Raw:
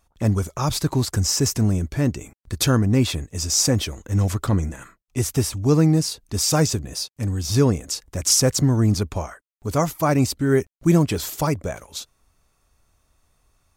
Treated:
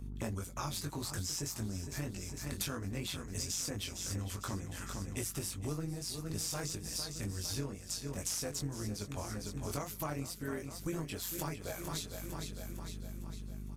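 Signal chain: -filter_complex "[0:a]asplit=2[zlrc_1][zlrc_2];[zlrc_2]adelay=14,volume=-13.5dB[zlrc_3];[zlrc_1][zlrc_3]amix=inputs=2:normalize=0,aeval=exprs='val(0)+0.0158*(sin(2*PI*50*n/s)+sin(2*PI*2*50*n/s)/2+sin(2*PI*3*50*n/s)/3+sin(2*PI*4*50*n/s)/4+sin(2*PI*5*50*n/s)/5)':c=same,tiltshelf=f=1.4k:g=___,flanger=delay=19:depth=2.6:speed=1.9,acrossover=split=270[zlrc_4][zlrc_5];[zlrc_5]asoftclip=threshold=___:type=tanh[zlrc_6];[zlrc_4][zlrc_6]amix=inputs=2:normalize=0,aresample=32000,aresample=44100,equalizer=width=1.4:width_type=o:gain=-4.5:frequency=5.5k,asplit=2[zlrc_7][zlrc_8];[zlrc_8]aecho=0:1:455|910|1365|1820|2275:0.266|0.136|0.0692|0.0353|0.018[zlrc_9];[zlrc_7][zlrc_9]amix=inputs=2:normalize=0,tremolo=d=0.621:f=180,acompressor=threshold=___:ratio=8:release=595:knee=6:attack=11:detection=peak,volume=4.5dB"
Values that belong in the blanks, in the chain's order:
-6, -17.5dB, -39dB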